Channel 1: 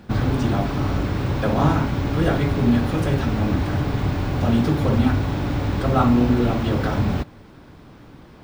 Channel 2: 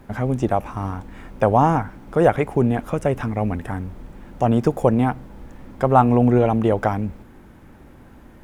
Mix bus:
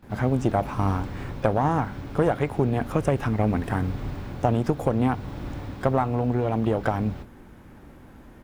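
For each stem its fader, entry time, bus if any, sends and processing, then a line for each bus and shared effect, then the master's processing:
−15.5 dB, 0.00 s, no send, no processing
−1.0 dB, 25 ms, no send, downward compressor 6 to 1, threshold −17 dBFS, peak gain reduction 9 dB; harmonic generator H 4 −20 dB, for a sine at −6 dBFS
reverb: not used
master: speech leveller within 3 dB 0.5 s

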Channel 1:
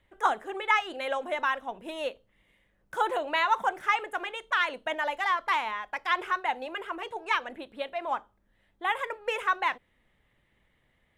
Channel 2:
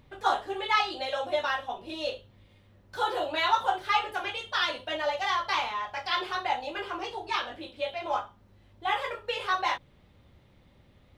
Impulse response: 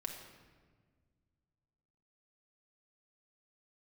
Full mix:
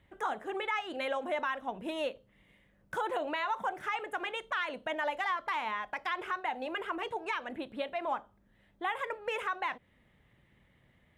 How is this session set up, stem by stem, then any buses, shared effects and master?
+1.5 dB, 0.00 s, no send, bass and treble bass +11 dB, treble −3 dB; downward compressor 2 to 1, threshold −34 dBFS, peak gain reduction 8.5 dB
−11.0 dB, 0.00 s, no send, transistor ladder low-pass 750 Hz, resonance 55%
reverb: not used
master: high-pass filter 160 Hz 6 dB per octave; brickwall limiter −23.5 dBFS, peak gain reduction 7 dB

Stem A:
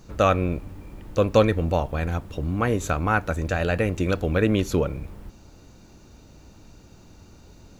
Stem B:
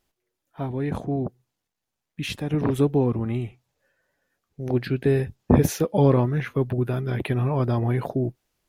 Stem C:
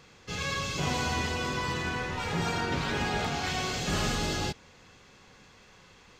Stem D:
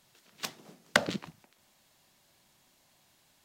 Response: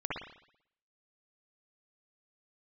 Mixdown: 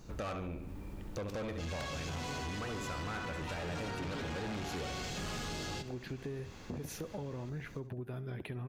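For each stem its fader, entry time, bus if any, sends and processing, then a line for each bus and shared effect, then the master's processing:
−4.5 dB, 0.00 s, no send, echo send −9.5 dB, no processing
−11.5 dB, 1.20 s, no send, echo send −17 dB, brickwall limiter −15 dBFS, peak gain reduction 10.5 dB
+1.0 dB, 1.30 s, no send, echo send −18 dB, no processing
−10.0 dB, 0.85 s, no send, no echo send, no processing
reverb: not used
echo: repeating echo 70 ms, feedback 37%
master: soft clipping −25.5 dBFS, distortion −9 dB; downward compressor 6 to 1, threshold −38 dBFS, peak gain reduction 10 dB

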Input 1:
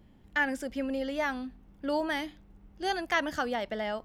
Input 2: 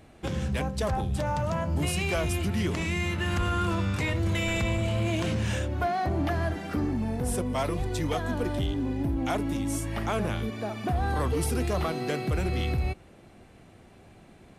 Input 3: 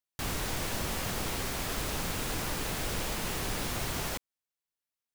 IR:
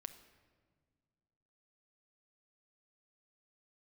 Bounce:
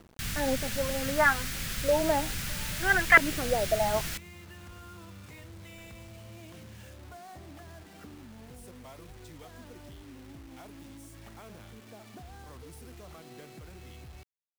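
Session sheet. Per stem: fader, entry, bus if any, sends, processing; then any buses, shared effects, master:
−1.0 dB, 0.00 s, no send, parametric band 1,800 Hz +10.5 dB 2.9 octaves; flanger 0.6 Hz, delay 0.2 ms, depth 5.7 ms, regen +10%; auto-filter low-pass saw up 0.63 Hz 370–2,100 Hz
−14.0 dB, 1.30 s, no send, downward compressor 6 to 1, threshold −31 dBFS, peak gain reduction 8 dB
+0.5 dB, 0.00 s, no send, flat-topped bell 550 Hz −14 dB 2.3 octaves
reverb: not used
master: bit reduction 9 bits

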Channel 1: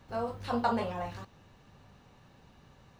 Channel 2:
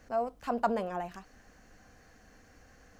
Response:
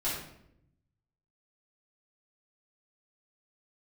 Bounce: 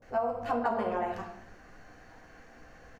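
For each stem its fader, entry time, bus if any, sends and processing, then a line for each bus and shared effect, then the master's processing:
−9.5 dB, 0.00 s, send −13 dB, low-pass on a step sequencer 5.7 Hz 530–2,200 Hz
+1.0 dB, 21 ms, send −4 dB, bass and treble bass −7 dB, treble −9 dB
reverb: on, RT60 0.75 s, pre-delay 3 ms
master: downward compressor 6 to 1, threshold −26 dBFS, peak gain reduction 8.5 dB

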